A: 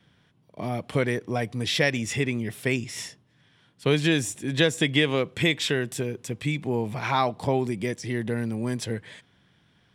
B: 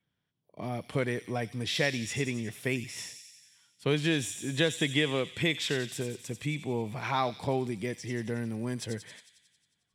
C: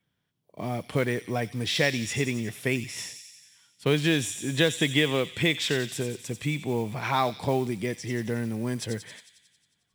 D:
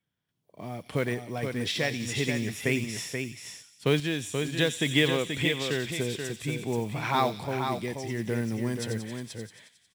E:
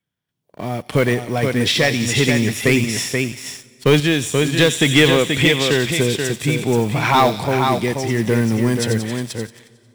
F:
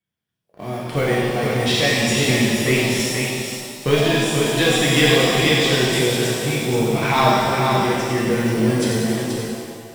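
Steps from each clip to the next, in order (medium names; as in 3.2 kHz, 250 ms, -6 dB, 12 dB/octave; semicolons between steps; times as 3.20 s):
spectral noise reduction 15 dB; feedback echo behind a high-pass 90 ms, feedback 67%, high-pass 3.7 kHz, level -6 dB; trim -5.5 dB
modulation noise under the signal 26 dB; trim +4 dB
random-step tremolo; delay 481 ms -6 dB
waveshaping leveller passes 2; on a send at -23 dB: reverberation RT60 3.3 s, pre-delay 38 ms; on the sum: trim +5.5 dB
pitch-shifted reverb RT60 1.7 s, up +7 st, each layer -8 dB, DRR -4.5 dB; trim -7 dB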